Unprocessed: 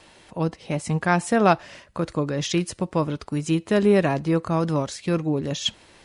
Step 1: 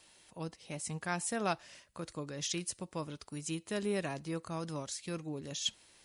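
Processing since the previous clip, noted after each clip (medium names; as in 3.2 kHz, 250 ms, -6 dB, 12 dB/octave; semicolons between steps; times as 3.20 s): pre-emphasis filter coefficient 0.8; trim -3 dB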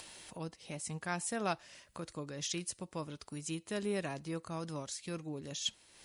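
upward compressor, threshold -40 dBFS; trim -1.5 dB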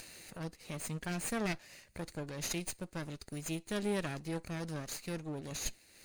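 comb filter that takes the minimum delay 0.45 ms; trim +2 dB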